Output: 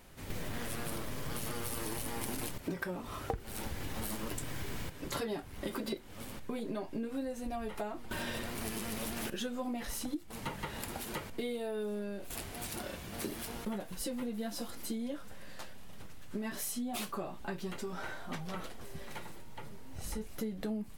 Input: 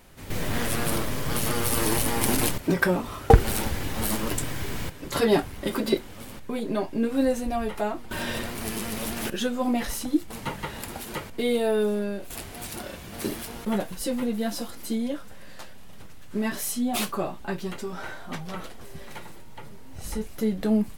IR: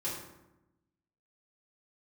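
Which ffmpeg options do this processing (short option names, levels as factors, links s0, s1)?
-af "acompressor=threshold=0.0316:ratio=10,volume=0.631"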